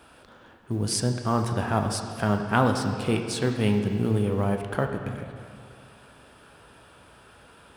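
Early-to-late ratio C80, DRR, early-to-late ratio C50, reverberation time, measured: 6.5 dB, 4.0 dB, 6.0 dB, 2.3 s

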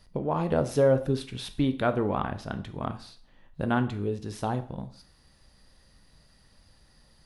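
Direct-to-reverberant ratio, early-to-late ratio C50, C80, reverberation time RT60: 9.5 dB, 14.0 dB, 18.0 dB, 0.50 s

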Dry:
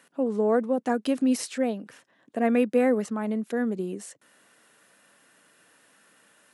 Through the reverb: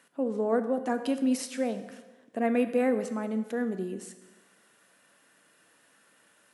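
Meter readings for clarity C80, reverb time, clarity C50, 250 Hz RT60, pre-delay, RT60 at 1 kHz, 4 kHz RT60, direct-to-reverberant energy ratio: 12.5 dB, 1.2 s, 11.0 dB, 1.3 s, 6 ms, 1.2 s, 1.1 s, 9.0 dB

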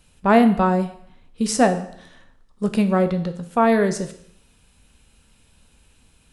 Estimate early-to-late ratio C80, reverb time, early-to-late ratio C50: 15.0 dB, 0.65 s, 12.5 dB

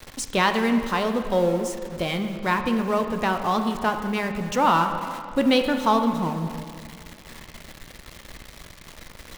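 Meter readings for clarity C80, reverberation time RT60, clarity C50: 8.5 dB, 2.3 s, 7.5 dB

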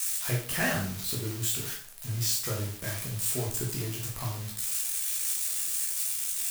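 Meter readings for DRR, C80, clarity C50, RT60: -3.0 dB, 9.5 dB, 4.5 dB, 0.45 s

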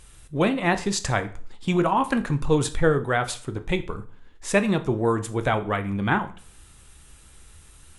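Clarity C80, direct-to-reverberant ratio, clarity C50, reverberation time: 20.0 dB, 9.0 dB, 15.5 dB, 0.45 s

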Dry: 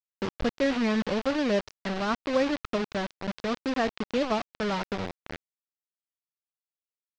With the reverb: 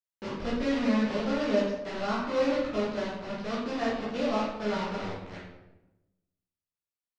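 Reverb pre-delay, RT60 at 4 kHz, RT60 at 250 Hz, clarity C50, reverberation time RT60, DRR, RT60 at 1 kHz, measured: 10 ms, 0.65 s, 1.3 s, 0.5 dB, 1.0 s, -9.0 dB, 0.90 s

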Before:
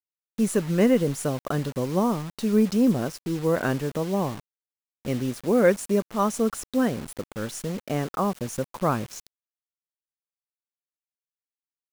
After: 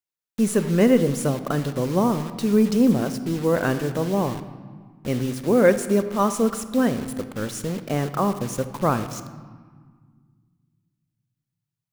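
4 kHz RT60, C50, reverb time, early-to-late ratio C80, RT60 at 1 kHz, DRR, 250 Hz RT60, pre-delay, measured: 1.1 s, 12.0 dB, 1.6 s, 13.5 dB, 1.7 s, 11.0 dB, 2.6 s, 29 ms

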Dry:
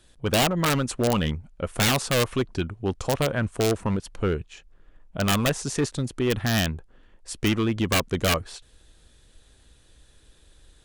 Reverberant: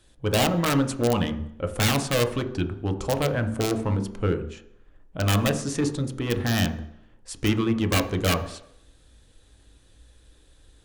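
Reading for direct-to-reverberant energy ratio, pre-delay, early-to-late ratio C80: 6.0 dB, 3 ms, 14.5 dB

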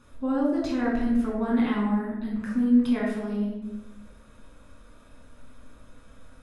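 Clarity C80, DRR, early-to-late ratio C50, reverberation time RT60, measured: 5.0 dB, -4.0 dB, 2.0 dB, 1.1 s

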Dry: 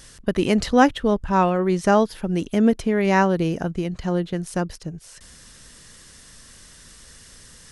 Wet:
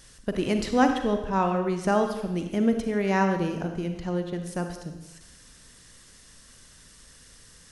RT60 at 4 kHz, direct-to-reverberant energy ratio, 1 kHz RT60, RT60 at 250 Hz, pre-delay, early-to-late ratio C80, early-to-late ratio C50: 0.95 s, 5.5 dB, 1.0 s, 0.85 s, 36 ms, 8.5 dB, 6.5 dB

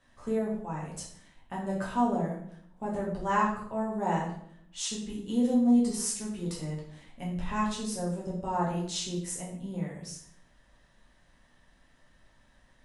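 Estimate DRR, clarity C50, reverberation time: -5.5 dB, 4.5 dB, 0.65 s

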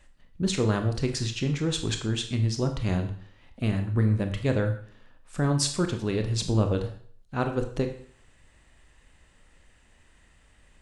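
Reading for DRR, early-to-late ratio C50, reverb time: 5.0 dB, 9.5 dB, 0.50 s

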